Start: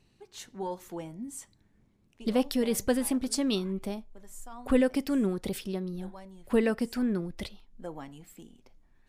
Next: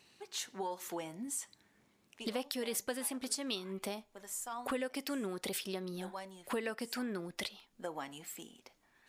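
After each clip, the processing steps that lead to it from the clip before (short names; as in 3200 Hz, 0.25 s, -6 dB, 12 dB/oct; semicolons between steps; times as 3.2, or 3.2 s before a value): HPF 940 Hz 6 dB/oct; compressor 4:1, threshold -45 dBFS, peak gain reduction 15.5 dB; gain +8.5 dB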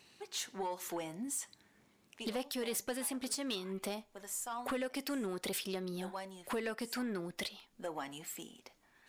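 soft clip -32 dBFS, distortion -15 dB; gain +2 dB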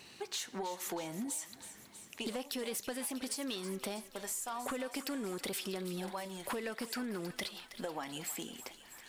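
compressor, threshold -45 dBFS, peak gain reduction 11 dB; thinning echo 0.321 s, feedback 74%, high-pass 860 Hz, level -12 dB; gain +8 dB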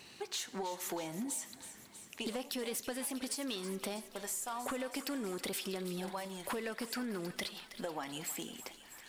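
warbling echo 90 ms, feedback 69%, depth 127 cents, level -23 dB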